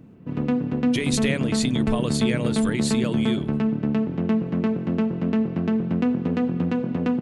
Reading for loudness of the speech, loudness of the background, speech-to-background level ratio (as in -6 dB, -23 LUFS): -28.0 LUFS, -24.0 LUFS, -4.0 dB